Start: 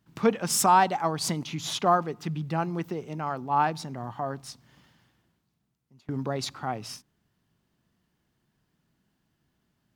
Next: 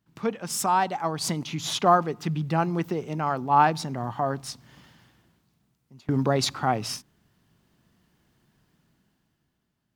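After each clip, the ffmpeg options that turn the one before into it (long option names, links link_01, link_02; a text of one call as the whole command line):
ffmpeg -i in.wav -af "dynaudnorm=framelen=170:gausssize=13:maxgain=13dB,volume=-5dB" out.wav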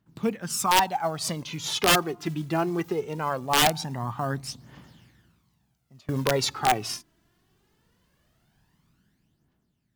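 ffmpeg -i in.wav -af "acrusher=bits=7:mode=log:mix=0:aa=0.000001,aphaser=in_gain=1:out_gain=1:delay=3.1:decay=0.54:speed=0.21:type=triangular,aeval=exprs='(mod(3.55*val(0)+1,2)-1)/3.55':channel_layout=same,volume=-1.5dB" out.wav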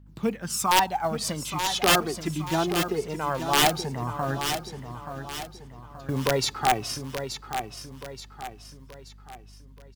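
ffmpeg -i in.wav -filter_complex "[0:a]aeval=exprs='val(0)+0.00316*(sin(2*PI*50*n/s)+sin(2*PI*2*50*n/s)/2+sin(2*PI*3*50*n/s)/3+sin(2*PI*4*50*n/s)/4+sin(2*PI*5*50*n/s)/5)':channel_layout=same,asplit=2[link_01][link_02];[link_02]aecho=0:1:878|1756|2634|3512|4390:0.376|0.162|0.0695|0.0299|0.0128[link_03];[link_01][link_03]amix=inputs=2:normalize=0" out.wav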